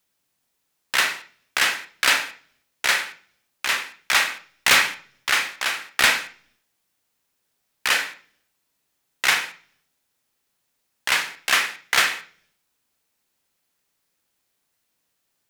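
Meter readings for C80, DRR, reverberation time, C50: 17.0 dB, 6.0 dB, 0.45 s, 12.0 dB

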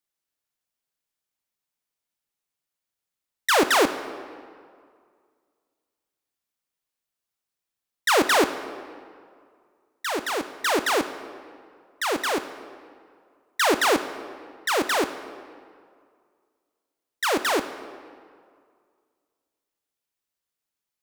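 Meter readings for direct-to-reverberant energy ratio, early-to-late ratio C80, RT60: 10.0 dB, 12.5 dB, 2.1 s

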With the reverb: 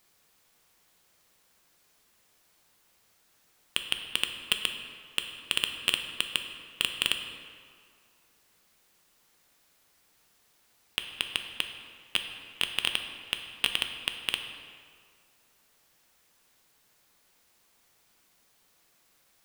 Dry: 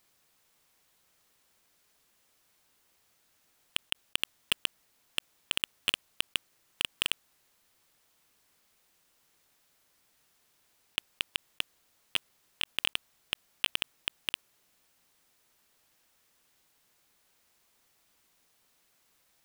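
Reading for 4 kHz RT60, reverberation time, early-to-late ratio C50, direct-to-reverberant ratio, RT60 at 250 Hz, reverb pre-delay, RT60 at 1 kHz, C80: 1.3 s, 2.1 s, 7.0 dB, 5.0 dB, 2.0 s, 3 ms, 2.1 s, 8.0 dB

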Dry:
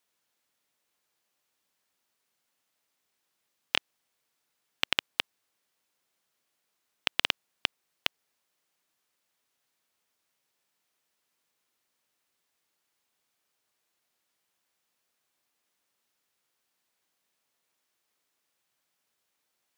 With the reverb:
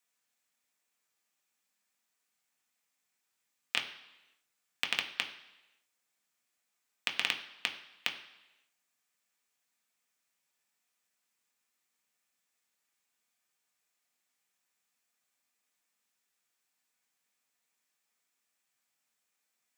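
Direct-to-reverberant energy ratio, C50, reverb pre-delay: 3.0 dB, 11.0 dB, 3 ms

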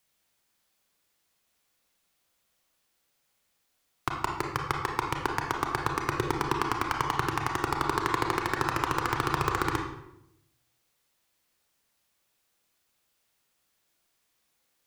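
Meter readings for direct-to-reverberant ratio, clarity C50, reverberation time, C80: 1.0 dB, 4.0 dB, 0.80 s, 7.0 dB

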